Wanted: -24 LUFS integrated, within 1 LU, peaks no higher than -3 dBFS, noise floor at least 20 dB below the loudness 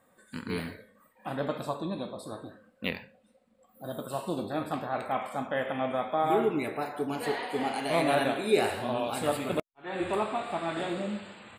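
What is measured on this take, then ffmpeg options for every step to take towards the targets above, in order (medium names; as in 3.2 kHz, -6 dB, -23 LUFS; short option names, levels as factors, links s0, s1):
loudness -31.5 LUFS; peak level -12.5 dBFS; loudness target -24.0 LUFS
-> -af "volume=2.37"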